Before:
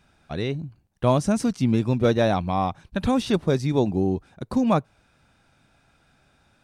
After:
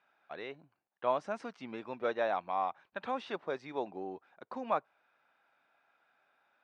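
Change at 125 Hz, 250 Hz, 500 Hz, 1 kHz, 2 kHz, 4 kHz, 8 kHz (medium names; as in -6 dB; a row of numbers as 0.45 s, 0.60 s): -33.0 dB, -23.0 dB, -11.5 dB, -7.5 dB, -7.5 dB, -15.5 dB, under -25 dB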